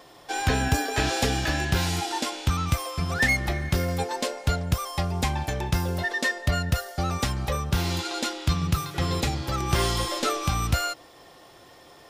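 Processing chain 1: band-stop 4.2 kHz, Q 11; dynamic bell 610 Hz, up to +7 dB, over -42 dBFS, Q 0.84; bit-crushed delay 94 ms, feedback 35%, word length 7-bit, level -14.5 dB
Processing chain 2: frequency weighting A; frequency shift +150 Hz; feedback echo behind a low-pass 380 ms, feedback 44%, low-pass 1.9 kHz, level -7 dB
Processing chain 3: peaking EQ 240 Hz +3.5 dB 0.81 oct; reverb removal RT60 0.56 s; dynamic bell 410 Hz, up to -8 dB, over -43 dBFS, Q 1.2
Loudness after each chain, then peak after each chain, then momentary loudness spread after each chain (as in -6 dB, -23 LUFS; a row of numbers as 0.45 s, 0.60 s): -24.5 LUFS, -28.0 LUFS, -28.0 LUFS; -6.0 dBFS, -9.0 dBFS, -10.0 dBFS; 5 LU, 7 LU, 5 LU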